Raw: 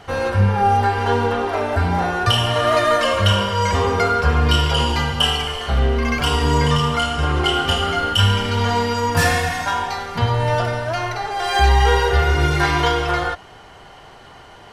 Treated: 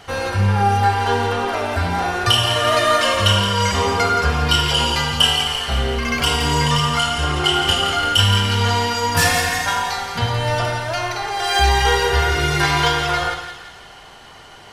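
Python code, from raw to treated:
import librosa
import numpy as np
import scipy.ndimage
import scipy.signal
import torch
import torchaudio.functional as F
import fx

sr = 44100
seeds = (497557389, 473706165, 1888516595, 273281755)

p1 = fx.high_shelf(x, sr, hz=2100.0, db=8.5)
p2 = p1 + fx.echo_split(p1, sr, split_hz=1500.0, low_ms=100, high_ms=171, feedback_pct=52, wet_db=-8.0, dry=0)
y = p2 * 10.0 ** (-2.5 / 20.0)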